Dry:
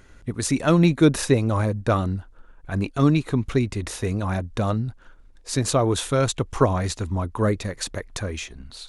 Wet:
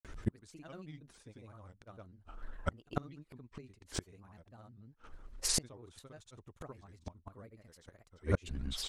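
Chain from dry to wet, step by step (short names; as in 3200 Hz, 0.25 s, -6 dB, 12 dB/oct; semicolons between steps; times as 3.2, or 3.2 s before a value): grains 0.1 s, grains 20/s, spray 0.1 s, pitch spread up and down by 3 st; flipped gate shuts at -21 dBFS, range -33 dB; gain +2 dB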